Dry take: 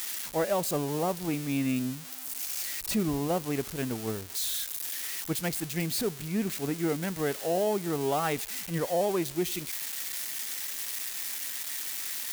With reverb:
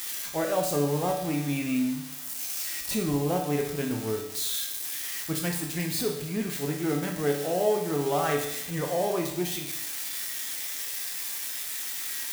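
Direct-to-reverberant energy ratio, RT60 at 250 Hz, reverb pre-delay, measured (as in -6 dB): 0.5 dB, 0.75 s, 7 ms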